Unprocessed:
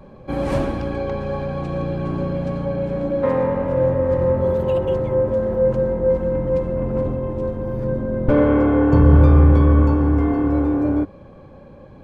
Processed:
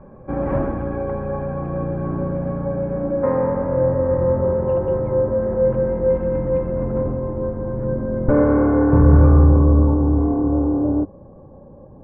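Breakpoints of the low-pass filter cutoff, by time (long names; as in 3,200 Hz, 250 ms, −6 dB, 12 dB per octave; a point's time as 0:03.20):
low-pass filter 24 dB per octave
0:05.28 1,700 Hz
0:06.17 2,600 Hz
0:07.27 1,700 Hz
0:09.19 1,700 Hz
0:09.70 1,000 Hz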